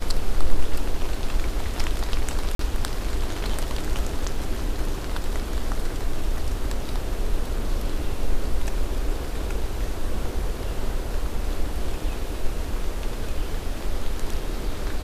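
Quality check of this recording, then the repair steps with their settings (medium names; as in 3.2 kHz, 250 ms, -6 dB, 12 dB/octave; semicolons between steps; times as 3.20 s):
2.55–2.59 s: dropout 43 ms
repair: interpolate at 2.55 s, 43 ms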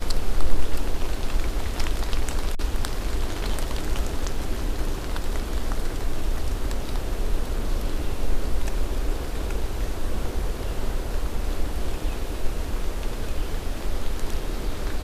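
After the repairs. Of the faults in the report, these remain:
nothing left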